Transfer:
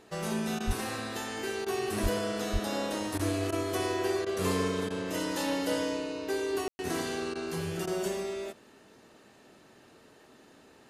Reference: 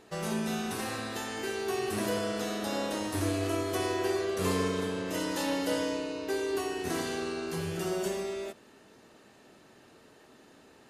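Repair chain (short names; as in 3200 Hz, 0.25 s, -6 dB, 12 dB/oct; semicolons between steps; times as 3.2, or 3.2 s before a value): clip repair -19 dBFS; 0.66–0.78 HPF 140 Hz 24 dB/oct; 2.02–2.14 HPF 140 Hz 24 dB/oct; 2.52–2.64 HPF 140 Hz 24 dB/oct; room tone fill 6.68–6.79; interpolate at 0.59/1.65/3.18/3.51/4.25/4.89/7.34/7.86, 12 ms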